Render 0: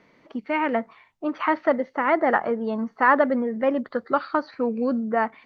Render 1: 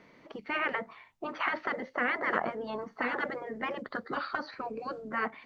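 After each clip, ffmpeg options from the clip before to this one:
ffmpeg -i in.wav -af "afftfilt=real='re*lt(hypot(re,im),0.282)':imag='im*lt(hypot(re,im),0.282)':win_size=1024:overlap=0.75" out.wav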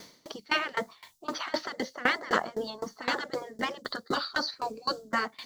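ffmpeg -i in.wav -af "aexciter=amount=6.5:drive=8.4:freq=3600,aeval=exprs='val(0)*pow(10,-23*if(lt(mod(3.9*n/s,1),2*abs(3.9)/1000),1-mod(3.9*n/s,1)/(2*abs(3.9)/1000),(mod(3.9*n/s,1)-2*abs(3.9)/1000)/(1-2*abs(3.9)/1000))/20)':channel_layout=same,volume=8.5dB" out.wav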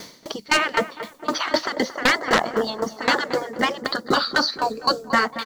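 ffmpeg -i in.wav -filter_complex "[0:a]asplit=2[link_01][link_02];[link_02]adelay=227,lowpass=frequency=1500:poles=1,volume=-11.5dB,asplit=2[link_03][link_04];[link_04]adelay=227,lowpass=frequency=1500:poles=1,volume=0.42,asplit=2[link_05][link_06];[link_06]adelay=227,lowpass=frequency=1500:poles=1,volume=0.42,asplit=2[link_07][link_08];[link_08]adelay=227,lowpass=frequency=1500:poles=1,volume=0.42[link_09];[link_01][link_03][link_05][link_07][link_09]amix=inputs=5:normalize=0,aeval=exprs='0.335*(cos(1*acos(clip(val(0)/0.335,-1,1)))-cos(1*PI/2))+0.0133*(cos(7*acos(clip(val(0)/0.335,-1,1)))-cos(7*PI/2))':channel_layout=same,aeval=exprs='0.355*sin(PI/2*2.82*val(0)/0.355)':channel_layout=same" out.wav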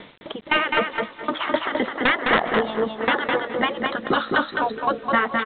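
ffmpeg -i in.wav -af "aresample=8000,acrusher=bits=7:mix=0:aa=0.000001,aresample=44100,aecho=1:1:209|418|627:0.631|0.114|0.0204,volume=-1dB" out.wav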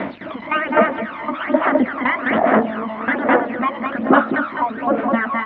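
ffmpeg -i in.wav -af "aeval=exprs='val(0)+0.5*0.0631*sgn(val(0))':channel_layout=same,aphaser=in_gain=1:out_gain=1:delay=1:decay=0.65:speed=1.2:type=sinusoidal,highpass=130,equalizer=frequency=140:width_type=q:width=4:gain=-9,equalizer=frequency=260:width_type=q:width=4:gain=7,equalizer=frequency=450:width_type=q:width=4:gain=-7,equalizer=frequency=640:width_type=q:width=4:gain=7,lowpass=frequency=2200:width=0.5412,lowpass=frequency=2200:width=1.3066,volume=-2.5dB" out.wav

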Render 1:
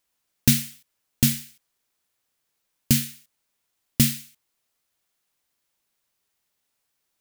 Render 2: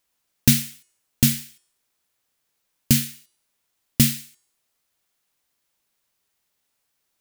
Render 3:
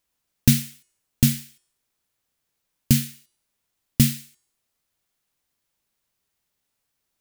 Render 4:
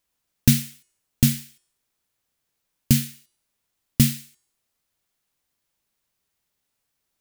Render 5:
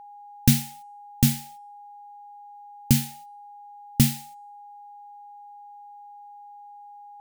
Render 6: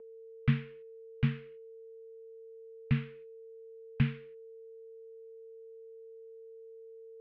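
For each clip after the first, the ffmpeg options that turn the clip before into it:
ffmpeg -i in.wav -af "bandreject=frequency=361.8:width_type=h:width=4,bandreject=frequency=723.6:width_type=h:width=4,bandreject=frequency=1085.4:width_type=h:width=4,bandreject=frequency=1447.2:width_type=h:width=4,bandreject=frequency=1809:width_type=h:width=4,bandreject=frequency=2170.8:width_type=h:width=4,bandreject=frequency=2532.6:width_type=h:width=4,bandreject=frequency=2894.4:width_type=h:width=4,bandreject=frequency=3256.2:width_type=h:width=4,bandreject=frequency=3618:width_type=h:width=4,bandreject=frequency=3979.8:width_type=h:width=4,bandreject=frequency=4341.6:width_type=h:width=4,bandreject=frequency=4703.4:width_type=h:width=4,bandreject=frequency=5065.2:width_type=h:width=4,bandreject=frequency=5427:width_type=h:width=4,bandreject=frequency=5788.8:width_type=h:width=4,bandreject=frequency=6150.6:width_type=h:width=4,bandreject=frequency=6512.4:width_type=h:width=4,bandreject=frequency=6874.2:width_type=h:width=4,bandreject=frequency=7236:width_type=h:width=4,bandreject=frequency=7597.8:width_type=h:width=4,bandreject=frequency=7959.6:width_type=h:width=4,bandreject=frequency=8321.4:width_type=h:width=4,bandreject=frequency=8683.2:width_type=h:width=4,bandreject=frequency=9045:width_type=h:width=4,bandreject=frequency=9406.8:width_type=h:width=4,bandreject=frequency=9768.6:width_type=h:width=4,bandreject=frequency=10130.4:width_type=h:width=4,bandreject=frequency=10492.2:width_type=h:width=4,volume=2dB" out.wav
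ffmpeg -i in.wav -af "lowshelf=frequency=240:gain=7,volume=-3.5dB" out.wav
ffmpeg -i in.wav -af "acrusher=bits=8:mode=log:mix=0:aa=0.000001" out.wav
ffmpeg -i in.wav -af "agate=range=-6dB:threshold=-47dB:ratio=16:detection=peak,aeval=exprs='val(0)+0.00891*sin(2*PI*820*n/s)':channel_layout=same,volume=-1.5dB" out.wav
ffmpeg -i in.wav -af "highpass=frequency=170:width_type=q:width=0.5412,highpass=frequency=170:width_type=q:width=1.307,lowpass=frequency=3000:width_type=q:width=0.5176,lowpass=frequency=3000:width_type=q:width=0.7071,lowpass=frequency=3000:width_type=q:width=1.932,afreqshift=-370,volume=-5dB" out.wav

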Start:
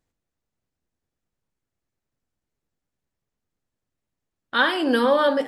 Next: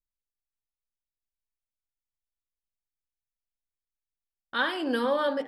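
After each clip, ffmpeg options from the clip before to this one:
ffmpeg -i in.wav -af "anlmdn=1.58,volume=-7.5dB" out.wav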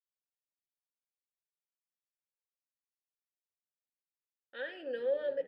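ffmpeg -i in.wav -filter_complex "[0:a]asplit=3[link_01][link_02][link_03];[link_01]bandpass=frequency=530:width_type=q:width=8,volume=0dB[link_04];[link_02]bandpass=frequency=1840:width_type=q:width=8,volume=-6dB[link_05];[link_03]bandpass=frequency=2480:width_type=q:width=8,volume=-9dB[link_06];[link_04][link_05][link_06]amix=inputs=3:normalize=0,asplit=5[link_07][link_08][link_09][link_10][link_11];[link_08]adelay=91,afreqshift=-84,volume=-24dB[link_12];[link_09]adelay=182,afreqshift=-168,volume=-28.6dB[link_13];[link_10]adelay=273,afreqshift=-252,volume=-33.2dB[link_14];[link_11]adelay=364,afreqshift=-336,volume=-37.7dB[link_15];[link_07][link_12][link_13][link_14][link_15]amix=inputs=5:normalize=0,volume=-1.5dB" out.wav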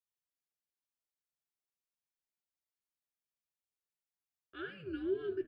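ffmpeg -i in.wav -filter_complex "[0:a]afreqshift=-170,asplit=2[link_01][link_02];[link_02]adelay=13,volume=-12.5dB[link_03];[link_01][link_03]amix=inputs=2:normalize=0,volume=-3.5dB" out.wav

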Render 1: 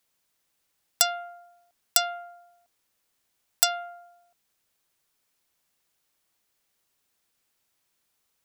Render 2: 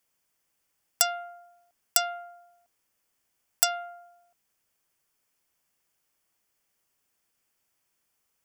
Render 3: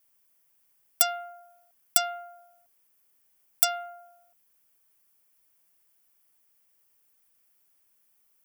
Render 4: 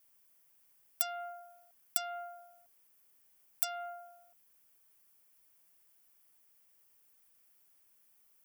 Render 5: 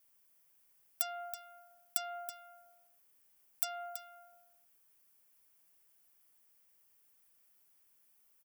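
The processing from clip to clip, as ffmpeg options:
ffmpeg -i in.wav -af "equalizer=frequency=3900:width_type=o:width=0.23:gain=-11.5,volume=-1dB" out.wav
ffmpeg -i in.wav -af "volume=16.5dB,asoftclip=hard,volume=-16.5dB,aexciter=amount=3.1:drive=3.3:freq=9600" out.wav
ffmpeg -i in.wav -af "acompressor=threshold=-28dB:ratio=16" out.wav
ffmpeg -i in.wav -af "aecho=1:1:327:0.282,volume=-2dB" out.wav

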